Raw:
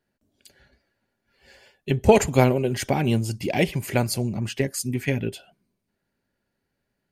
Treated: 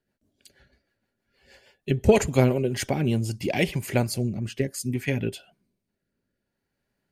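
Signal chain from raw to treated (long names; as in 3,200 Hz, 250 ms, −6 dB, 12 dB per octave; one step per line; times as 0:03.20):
rotating-speaker cabinet horn 6.3 Hz, later 0.6 Hz, at 0:02.23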